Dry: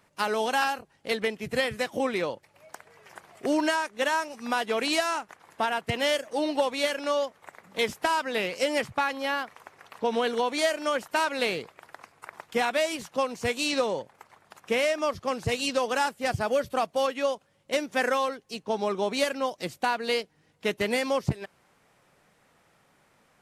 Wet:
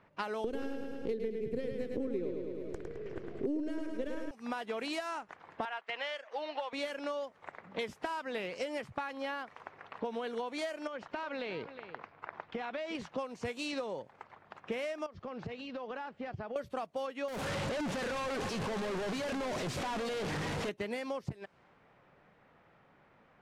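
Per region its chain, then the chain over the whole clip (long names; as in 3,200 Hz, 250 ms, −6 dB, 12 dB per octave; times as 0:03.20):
0:00.44–0:04.31: gain on one half-wave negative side −7 dB + low shelf with overshoot 590 Hz +12.5 dB, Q 3 + repeating echo 106 ms, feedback 51%, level −6 dB
0:05.65–0:06.73: band-pass filter 660–3,100 Hz + spectral tilt +2 dB per octave
0:10.87–0:12.95: low-pass filter 5,200 Hz + downward compressor 5 to 1, threshold −32 dBFS + single-tap delay 358 ms −15 dB
0:15.06–0:16.56: downward compressor 16 to 1, threshold −36 dBFS + high-frequency loss of the air 110 metres
0:17.28–0:20.69: sign of each sample alone + single-tap delay 583 ms −13.5 dB
whole clip: high-shelf EQ 3,700 Hz −9 dB; low-pass that shuts in the quiet parts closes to 3,000 Hz, open at −24 dBFS; downward compressor 6 to 1, threshold −36 dBFS; level +1 dB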